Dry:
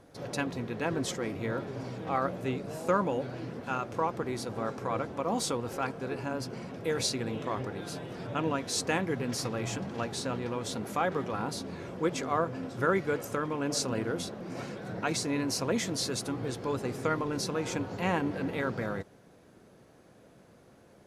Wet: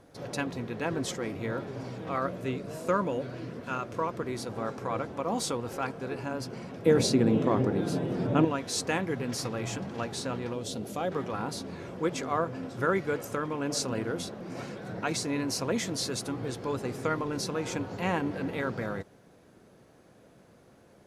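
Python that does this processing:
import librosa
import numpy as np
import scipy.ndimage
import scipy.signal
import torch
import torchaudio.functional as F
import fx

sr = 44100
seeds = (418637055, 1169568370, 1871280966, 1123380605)

y = fx.notch(x, sr, hz=810.0, q=6.5, at=(2.06, 4.37))
y = fx.peak_eq(y, sr, hz=240.0, db=12.5, octaves=2.9, at=(6.86, 8.45))
y = fx.band_shelf(y, sr, hz=1400.0, db=-8.5, octaves=1.7, at=(10.53, 11.12))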